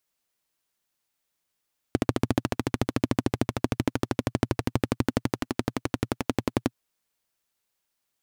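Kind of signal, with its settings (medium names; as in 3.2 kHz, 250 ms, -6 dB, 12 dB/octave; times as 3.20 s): single-cylinder engine model, changing speed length 4.79 s, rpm 1700, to 1300, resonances 120/250 Hz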